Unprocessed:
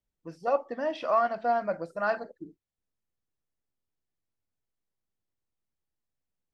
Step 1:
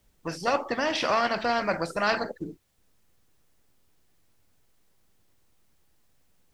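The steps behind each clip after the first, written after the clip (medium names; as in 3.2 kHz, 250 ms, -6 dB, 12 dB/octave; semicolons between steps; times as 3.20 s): spectrum-flattening compressor 2:1; trim +1.5 dB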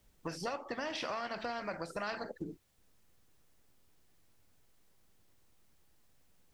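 compression 6:1, threshold -34 dBFS, peak gain reduction 14 dB; trim -2 dB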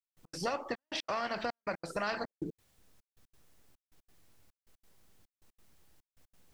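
trance gate "..x.xxxxx" 180 bpm -60 dB; trim +4 dB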